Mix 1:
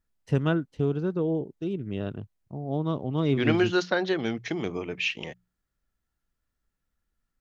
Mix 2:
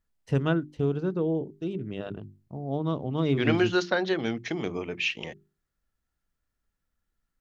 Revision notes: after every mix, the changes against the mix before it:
master: add hum notches 50/100/150/200/250/300/350/400 Hz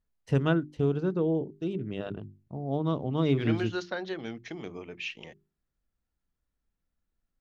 second voice -8.5 dB

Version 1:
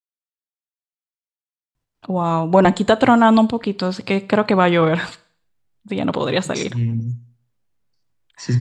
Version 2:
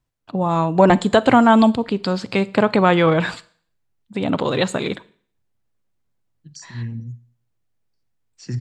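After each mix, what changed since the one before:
first voice: entry -1.75 s; second voice -8.0 dB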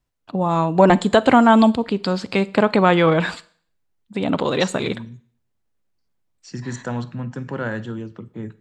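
second voice: entry -1.95 s; master: add peaking EQ 120 Hz -10.5 dB 0.21 oct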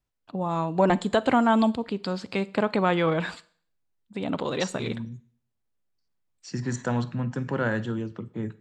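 first voice -8.0 dB

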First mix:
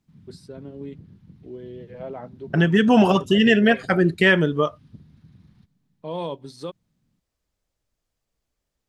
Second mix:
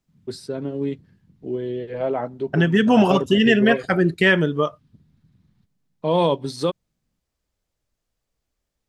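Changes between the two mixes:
first voice +11.0 dB; background -8.0 dB

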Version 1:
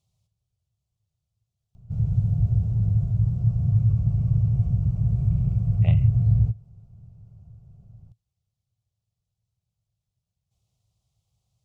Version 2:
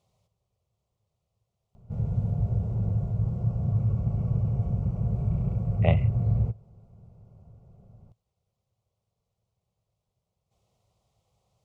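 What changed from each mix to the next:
background -4.5 dB; master: add ten-band graphic EQ 125 Hz -3 dB, 250 Hz +8 dB, 500 Hz +12 dB, 1 kHz +9 dB, 2 kHz +7 dB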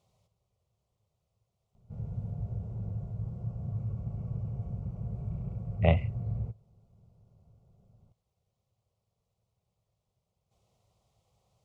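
background -9.5 dB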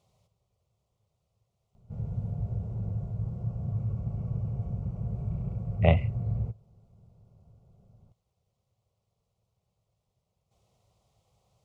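background +3.5 dB; reverb: on, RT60 0.35 s

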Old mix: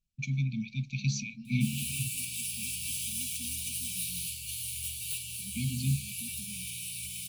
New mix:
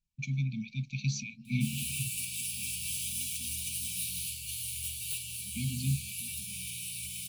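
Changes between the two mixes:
second voice -7.5 dB; reverb: off

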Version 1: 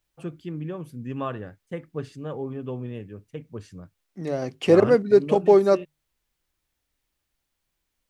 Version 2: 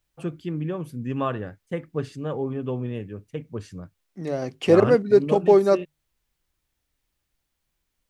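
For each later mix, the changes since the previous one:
first voice +4.0 dB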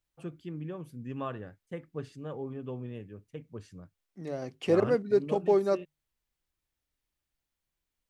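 first voice -10.0 dB; second voice -8.5 dB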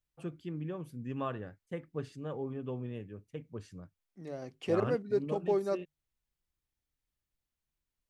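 second voice -5.5 dB

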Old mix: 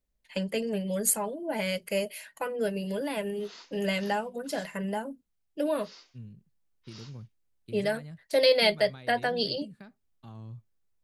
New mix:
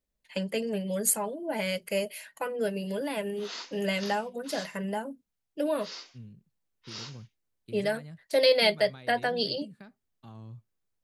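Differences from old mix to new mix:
background +9.5 dB; master: add bass shelf 68 Hz -8 dB

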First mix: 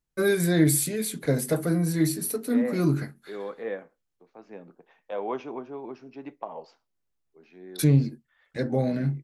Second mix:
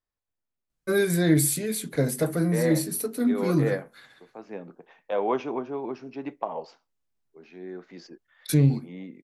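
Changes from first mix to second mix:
first voice: entry +0.70 s; second voice +5.5 dB

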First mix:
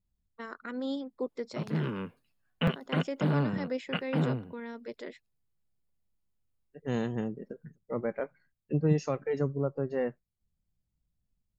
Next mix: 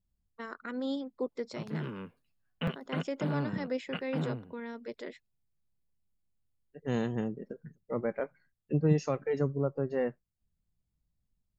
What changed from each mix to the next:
background -5.5 dB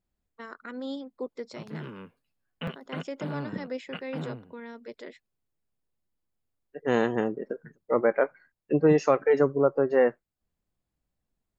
second voice: add FFT filter 170 Hz 0 dB, 320 Hz +10 dB, 1.5 kHz +13 dB, 4.2 kHz +4 dB; master: add bass shelf 220 Hz -4 dB

